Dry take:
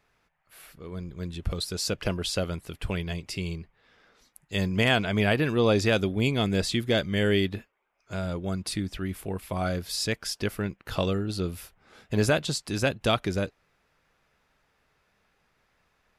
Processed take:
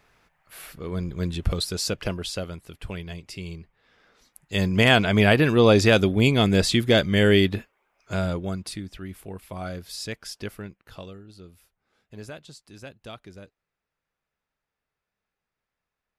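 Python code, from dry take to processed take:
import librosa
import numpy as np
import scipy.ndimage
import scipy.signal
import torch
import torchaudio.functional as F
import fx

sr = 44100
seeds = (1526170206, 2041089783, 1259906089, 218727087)

y = fx.gain(x, sr, db=fx.line((1.27, 7.5), (2.53, -4.0), (3.38, -4.0), (4.97, 6.0), (8.22, 6.0), (8.82, -5.0), (10.48, -5.0), (11.22, -16.5)))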